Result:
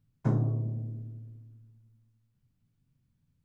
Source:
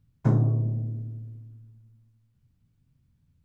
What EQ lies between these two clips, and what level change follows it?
peaking EQ 64 Hz -13.5 dB 0.64 oct; -4.0 dB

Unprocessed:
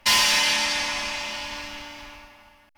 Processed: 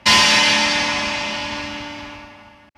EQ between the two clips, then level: high-pass 110 Hz 12 dB/octave; distance through air 62 m; bass shelf 270 Hz +11 dB; +7.5 dB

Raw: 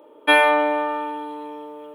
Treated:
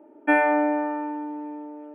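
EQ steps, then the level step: tone controls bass +12 dB, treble -9 dB; treble shelf 2.2 kHz -11.5 dB; static phaser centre 730 Hz, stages 8; 0.0 dB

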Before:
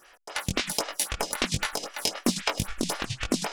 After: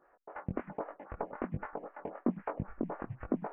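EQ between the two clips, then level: Gaussian low-pass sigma 7 samples; bass shelf 93 Hz -10 dB; -3.5 dB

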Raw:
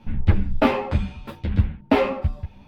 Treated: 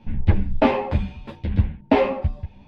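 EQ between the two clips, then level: peaking EQ 1.3 kHz -8 dB 0.34 oct; dynamic bell 800 Hz, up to +3 dB, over -32 dBFS, Q 0.72; distance through air 80 m; 0.0 dB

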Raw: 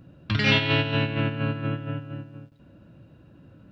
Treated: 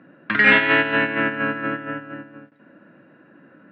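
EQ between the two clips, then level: high-pass 210 Hz 24 dB/octave; resonant low-pass 1.8 kHz, resonance Q 3.9; +4.5 dB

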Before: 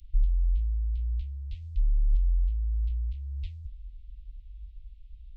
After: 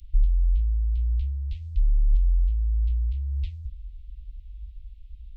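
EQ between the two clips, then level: peaking EQ 65 Hz +6.5 dB 0.2 oct; +3.5 dB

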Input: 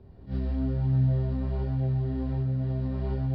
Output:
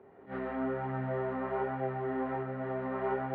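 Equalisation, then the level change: dynamic bell 1.2 kHz, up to +6 dB, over -54 dBFS, Q 0.83; distance through air 57 m; cabinet simulation 390–2600 Hz, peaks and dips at 420 Hz +5 dB, 810 Hz +5 dB, 1.3 kHz +7 dB, 2 kHz +7 dB; +3.0 dB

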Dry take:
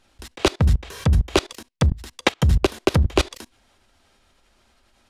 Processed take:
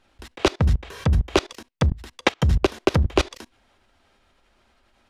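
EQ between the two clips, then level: dynamic bell 5.8 kHz, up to +5 dB, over -44 dBFS, Q 2.1; tone controls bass -2 dB, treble -8 dB; 0.0 dB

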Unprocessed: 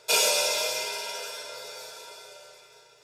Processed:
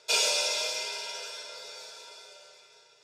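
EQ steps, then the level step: band-pass 140–5400 Hz; treble shelf 3.6 kHz +11 dB; -6.0 dB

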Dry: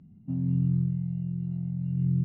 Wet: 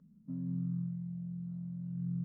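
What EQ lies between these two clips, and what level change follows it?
bass shelf 110 Hz -5.5 dB; static phaser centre 510 Hz, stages 8; -5.0 dB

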